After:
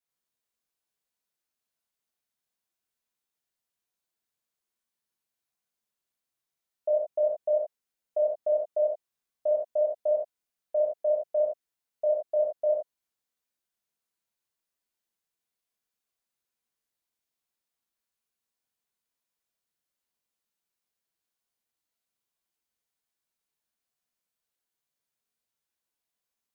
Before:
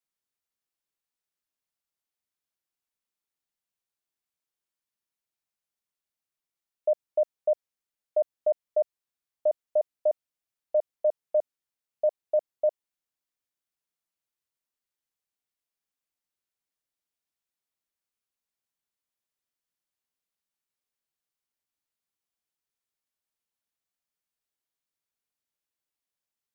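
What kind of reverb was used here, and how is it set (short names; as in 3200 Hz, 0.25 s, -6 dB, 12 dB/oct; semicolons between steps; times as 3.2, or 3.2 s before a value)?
non-linear reverb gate 0.14 s flat, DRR -5 dB; gain -4 dB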